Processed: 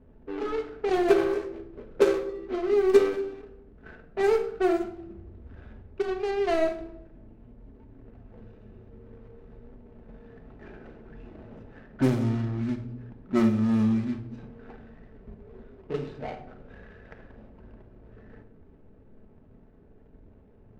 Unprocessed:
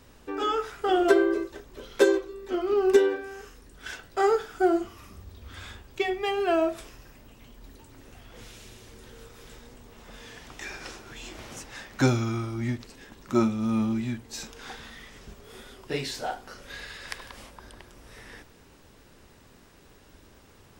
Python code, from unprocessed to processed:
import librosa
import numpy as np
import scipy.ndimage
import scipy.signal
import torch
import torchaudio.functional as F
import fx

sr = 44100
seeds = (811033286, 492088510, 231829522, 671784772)

y = scipy.ndimage.median_filter(x, 41, mode='constant')
y = fx.env_lowpass(y, sr, base_hz=2000.0, full_db=-20.5)
y = fx.room_shoebox(y, sr, seeds[0], volume_m3=1900.0, walls='furnished', distance_m=1.5)